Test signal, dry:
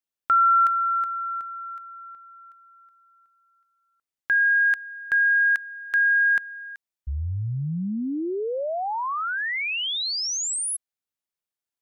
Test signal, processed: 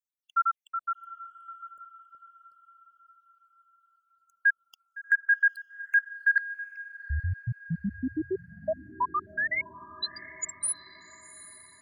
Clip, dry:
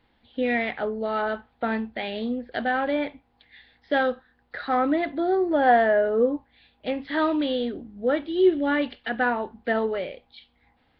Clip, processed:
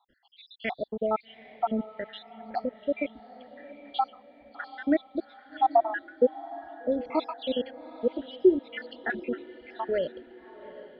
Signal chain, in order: random spectral dropouts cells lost 81%; bell 800 Hz +5.5 dB 0.72 oct; diffused feedback echo 0.796 s, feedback 47%, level -16 dB

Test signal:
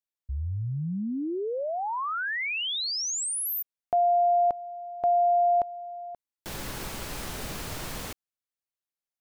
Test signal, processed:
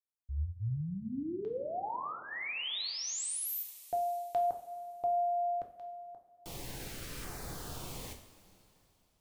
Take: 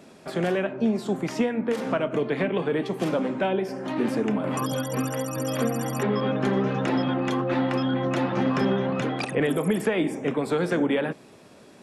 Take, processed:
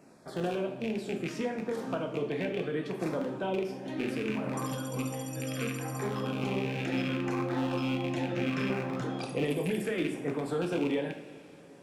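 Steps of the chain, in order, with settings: rattling part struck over -27 dBFS, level -18 dBFS; LFO notch saw down 0.69 Hz 700–3600 Hz; two-slope reverb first 0.46 s, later 3.3 s, from -16 dB, DRR 3 dB; gain -8.5 dB

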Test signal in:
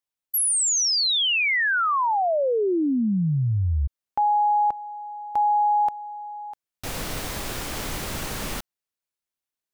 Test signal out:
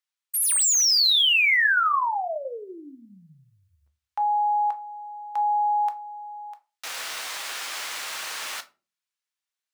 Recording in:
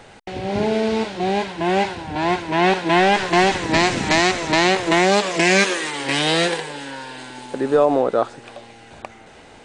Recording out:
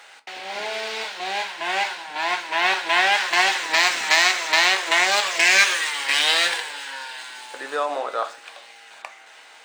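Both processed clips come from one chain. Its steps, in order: median filter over 3 samples; HPF 1200 Hz 12 dB/oct; shoebox room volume 130 m³, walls furnished, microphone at 0.58 m; gain +2.5 dB

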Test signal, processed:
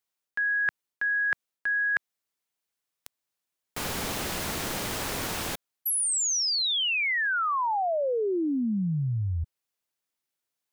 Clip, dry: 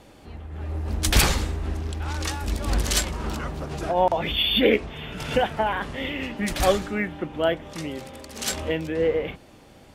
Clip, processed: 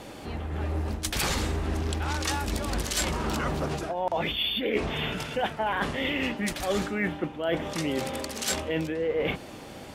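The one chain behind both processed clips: low shelf 77 Hz -10 dB; reverse; compressor 16:1, threshold -33 dBFS; reverse; gain +8.5 dB

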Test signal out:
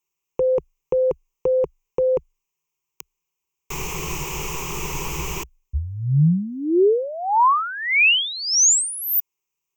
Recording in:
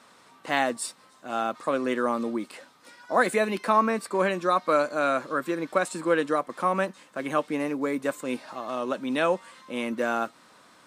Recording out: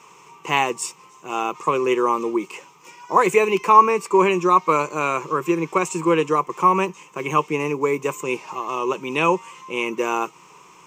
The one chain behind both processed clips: ripple EQ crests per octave 0.74, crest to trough 17 dB; gain +4 dB

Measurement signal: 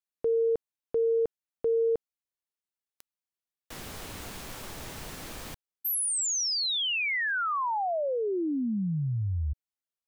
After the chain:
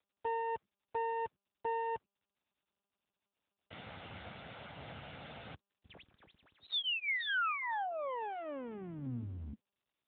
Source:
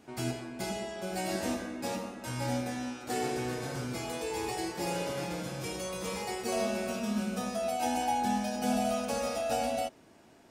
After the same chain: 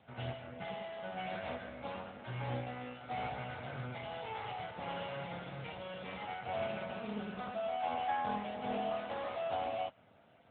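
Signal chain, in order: minimum comb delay 1.4 ms; dynamic EQ 320 Hz, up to -6 dB, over -45 dBFS, Q 0.78; gain -1.5 dB; AMR-NB 10.2 kbps 8000 Hz

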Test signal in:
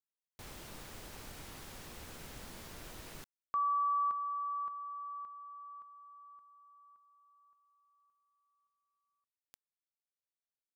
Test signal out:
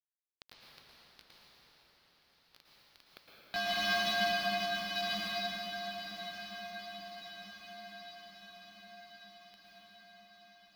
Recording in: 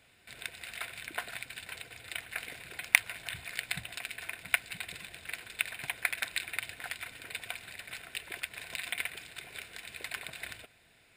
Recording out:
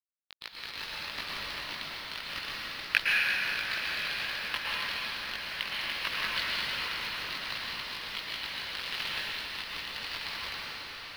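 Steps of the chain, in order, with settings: ring modulator 450 Hz; bell 230 Hz -5.5 dB 1.5 oct; in parallel at -3 dB: negative-ratio compressor -46 dBFS, ratio -1; on the sum: chorus voices 6, 0.66 Hz, delay 19 ms, depth 1.2 ms; bit-crush 6-bit; resonant high shelf 5800 Hz -9.5 dB, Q 3; on a send: diffused feedback echo 1.038 s, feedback 62%, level -10 dB; on the sum: plate-style reverb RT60 4.3 s, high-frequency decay 0.65×, pre-delay 0.1 s, DRR -6 dB

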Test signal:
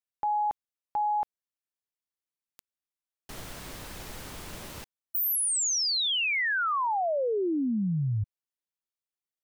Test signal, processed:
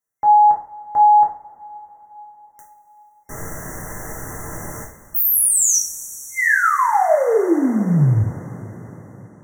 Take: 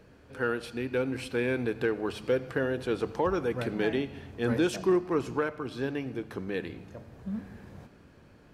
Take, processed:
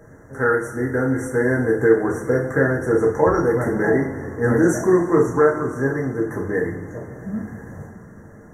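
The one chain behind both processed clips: two-slope reverb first 0.39 s, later 5 s, from -22 dB, DRR -3 dB; FFT band-reject 2100–5600 Hz; gain +6.5 dB

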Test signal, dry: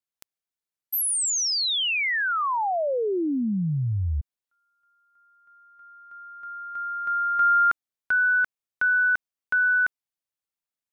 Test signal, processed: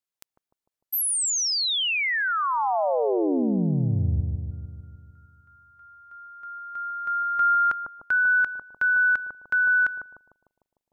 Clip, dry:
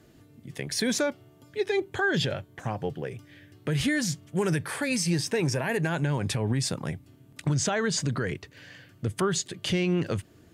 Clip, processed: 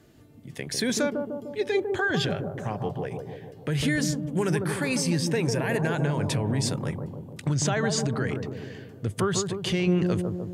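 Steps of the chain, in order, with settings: analogue delay 0.15 s, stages 1024, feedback 62%, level -4 dB

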